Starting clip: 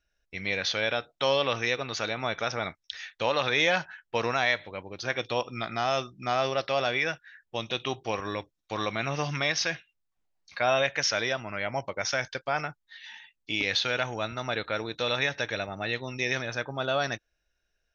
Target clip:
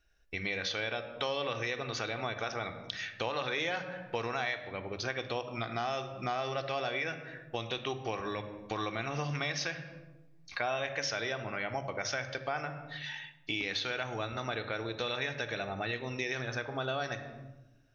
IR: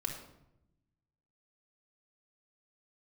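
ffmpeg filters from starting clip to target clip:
-filter_complex "[0:a]asplit=2[link_01][link_02];[1:a]atrim=start_sample=2205,highshelf=frequency=5400:gain=-9[link_03];[link_02][link_03]afir=irnorm=-1:irlink=0,volume=-2dB[link_04];[link_01][link_04]amix=inputs=2:normalize=0,acompressor=threshold=-35dB:ratio=3"

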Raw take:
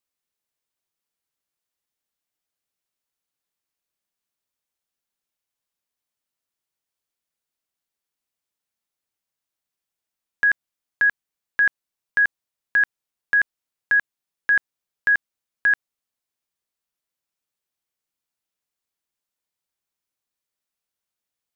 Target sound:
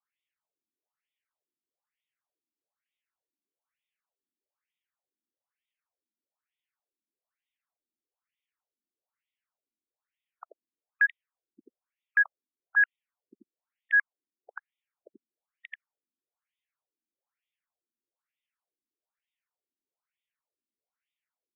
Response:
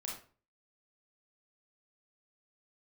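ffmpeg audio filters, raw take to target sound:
-af "alimiter=limit=-19.5dB:level=0:latency=1,afftfilt=real='re*between(b*sr/1024,260*pow(2700/260,0.5+0.5*sin(2*PI*1.1*pts/sr))/1.41,260*pow(2700/260,0.5+0.5*sin(2*PI*1.1*pts/sr))*1.41)':imag='im*between(b*sr/1024,260*pow(2700/260,0.5+0.5*sin(2*PI*1.1*pts/sr))/1.41,260*pow(2700/260,0.5+0.5*sin(2*PI*1.1*pts/sr))*1.41)':win_size=1024:overlap=0.75,volume=3.5dB"

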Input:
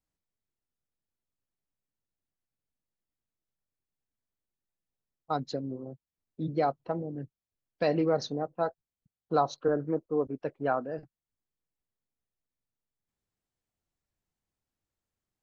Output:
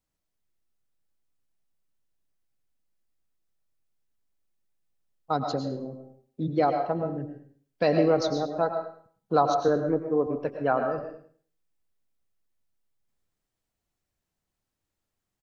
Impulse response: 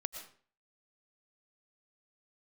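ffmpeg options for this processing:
-filter_complex "[0:a]aecho=1:1:105|210|315:0.2|0.0459|0.0106[link_01];[1:a]atrim=start_sample=2205[link_02];[link_01][link_02]afir=irnorm=-1:irlink=0,volume=5dB"

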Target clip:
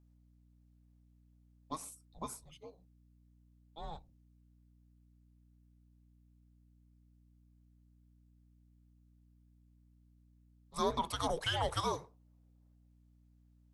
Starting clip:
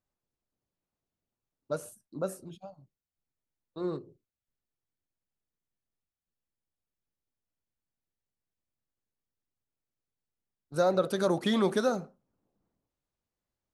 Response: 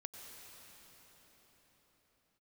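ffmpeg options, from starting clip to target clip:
-af "afreqshift=-320,lowshelf=frequency=350:width_type=q:width=1.5:gain=-13.5,aeval=exprs='val(0)+0.000631*(sin(2*PI*60*n/s)+sin(2*PI*2*60*n/s)/2+sin(2*PI*3*60*n/s)/3+sin(2*PI*4*60*n/s)/4+sin(2*PI*5*60*n/s)/5)':channel_layout=same"

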